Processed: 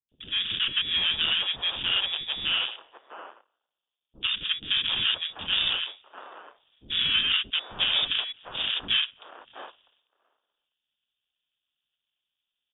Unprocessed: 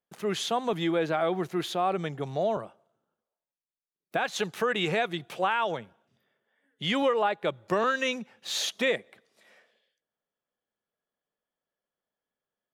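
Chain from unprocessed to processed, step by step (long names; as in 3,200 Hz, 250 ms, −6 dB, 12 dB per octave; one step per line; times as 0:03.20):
in parallel at −1 dB: downward compressor, threshold −41 dBFS, peak gain reduction 18.5 dB
on the sum: sample-rate reduction 1,500 Hz, jitter 20%
voice inversion scrambler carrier 3,600 Hz
three-band delay without the direct sound lows, highs, mids 90/740 ms, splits 390/1,200 Hz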